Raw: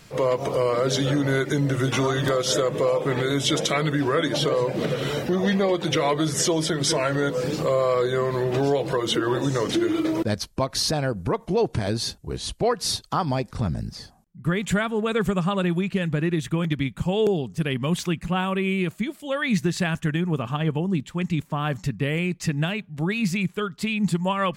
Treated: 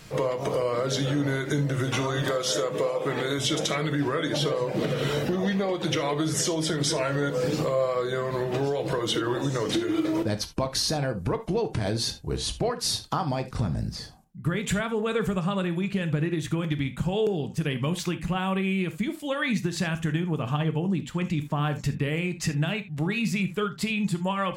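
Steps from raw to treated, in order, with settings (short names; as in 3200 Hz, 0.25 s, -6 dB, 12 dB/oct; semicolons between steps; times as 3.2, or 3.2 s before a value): 2.22–3.39 low shelf 150 Hz -10.5 dB; compressor, threshold -25 dBFS, peak gain reduction 8 dB; reverb, pre-delay 6 ms, DRR 8.5 dB; gain +1.5 dB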